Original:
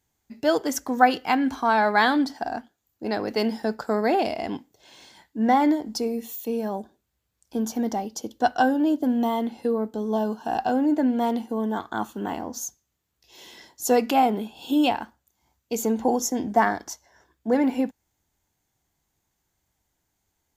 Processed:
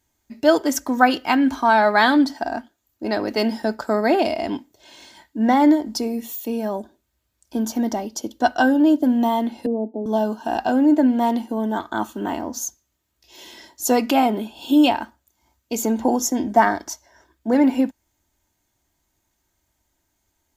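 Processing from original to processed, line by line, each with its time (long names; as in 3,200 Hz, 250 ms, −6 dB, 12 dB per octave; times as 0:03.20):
0:09.66–0:10.06: elliptic band-pass filter 220–780 Hz
whole clip: comb filter 3.2 ms, depth 41%; level +3.5 dB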